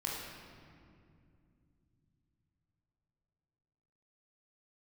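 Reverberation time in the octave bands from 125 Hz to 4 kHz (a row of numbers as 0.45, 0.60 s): 5.0, 4.1, 2.8, 2.1, 1.9, 1.4 s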